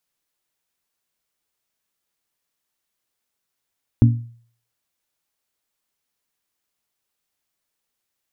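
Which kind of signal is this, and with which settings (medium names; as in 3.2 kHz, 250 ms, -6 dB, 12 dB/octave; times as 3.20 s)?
glass hit bell, lowest mode 117 Hz, modes 3, decay 0.50 s, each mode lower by 5 dB, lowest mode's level -6.5 dB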